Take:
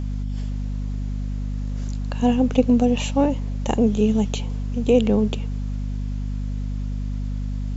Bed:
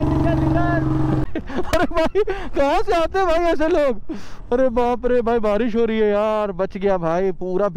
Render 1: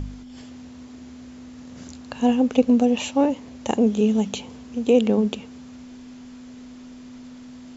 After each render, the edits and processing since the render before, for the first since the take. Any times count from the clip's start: de-hum 50 Hz, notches 4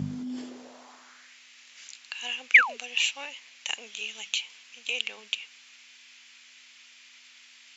2.54–2.77 s: painted sound fall 400–2500 Hz -16 dBFS; high-pass sweep 150 Hz -> 2.4 kHz, 0.08–1.38 s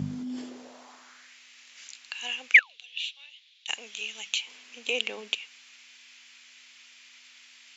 2.59–3.68 s: band-pass filter 3.6 kHz, Q 4.9; 4.47–5.35 s: peaking EQ 330 Hz +13 dB 2.5 oct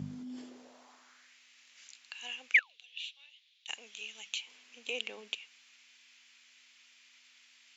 trim -8.5 dB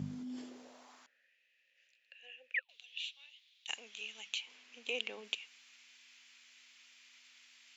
1.06–2.69 s: vowel filter e; 3.80–5.24 s: distance through air 56 m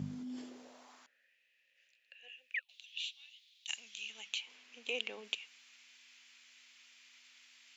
2.28–4.10 s: FFT filter 170 Hz 0 dB, 410 Hz -15 dB, 680 Hz -11 dB, 4.5 kHz +4 dB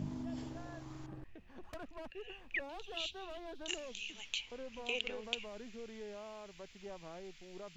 add bed -30 dB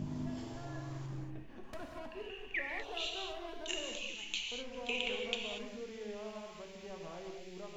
gated-style reverb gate 260 ms flat, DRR 0.5 dB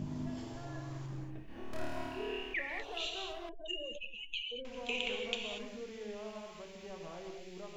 1.45–2.54 s: flutter echo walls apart 4.6 m, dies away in 1.3 s; 3.49–4.65 s: spectral contrast enhancement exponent 2.5

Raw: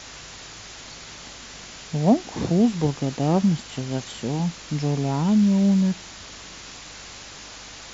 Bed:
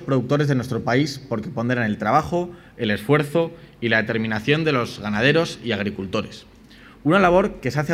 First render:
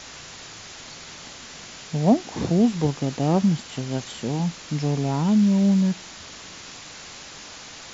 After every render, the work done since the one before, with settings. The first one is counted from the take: de-hum 50 Hz, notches 2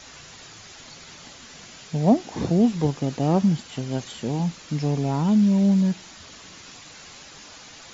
noise reduction 6 dB, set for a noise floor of -41 dBFS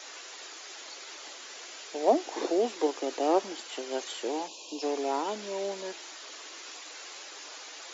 4.47–4.82 s: time-frequency box 1.1–2.4 kHz -28 dB; steep high-pass 320 Hz 48 dB/octave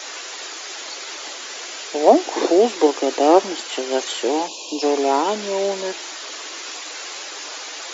trim +12 dB; peak limiter -1 dBFS, peak gain reduction 1.5 dB

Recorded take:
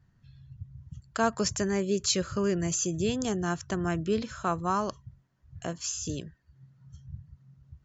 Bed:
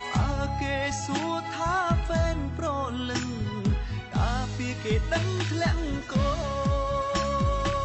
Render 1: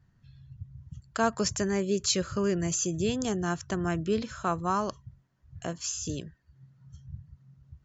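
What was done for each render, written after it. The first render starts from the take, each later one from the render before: no audible change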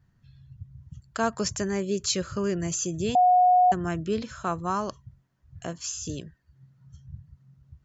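3.15–3.72 s: bleep 727 Hz -15 dBFS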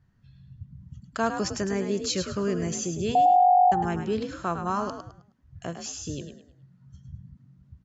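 distance through air 50 m; frequency-shifting echo 105 ms, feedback 30%, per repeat +48 Hz, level -8 dB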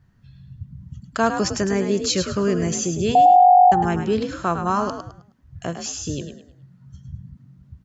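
trim +6.5 dB

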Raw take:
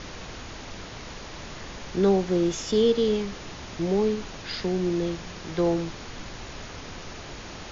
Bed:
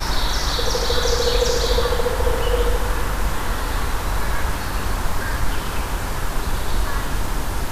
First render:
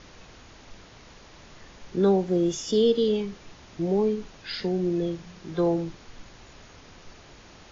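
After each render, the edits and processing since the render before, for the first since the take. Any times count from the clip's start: noise print and reduce 10 dB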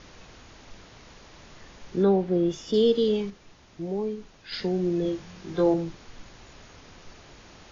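2.03–2.74 s: distance through air 150 m; 3.30–4.52 s: gain -6 dB; 5.03–5.74 s: doubling 21 ms -4 dB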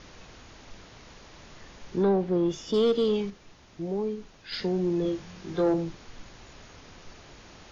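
saturation -16.5 dBFS, distortion -17 dB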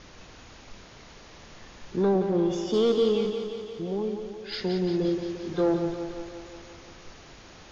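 thinning echo 175 ms, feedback 68%, high-pass 170 Hz, level -7 dB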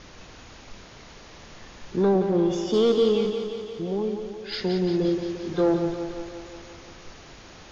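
trim +2.5 dB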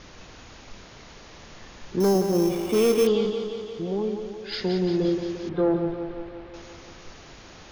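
2.00–3.07 s: sample-rate reducer 5.8 kHz; 5.49–6.54 s: distance through air 360 m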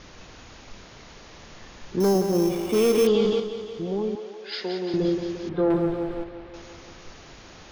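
2.94–3.40 s: level flattener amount 50%; 4.15–4.94 s: band-pass 380–6700 Hz; 5.70–6.24 s: waveshaping leveller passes 1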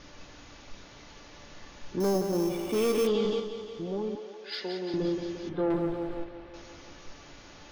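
feedback comb 290 Hz, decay 0.16 s, harmonics all, mix 70%; in parallel at -5.5 dB: saturation -29 dBFS, distortion -13 dB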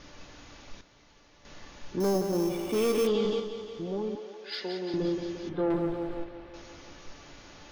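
0.81–1.45 s: gain -9.5 dB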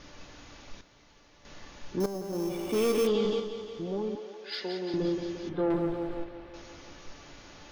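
2.06–2.74 s: fade in, from -13 dB

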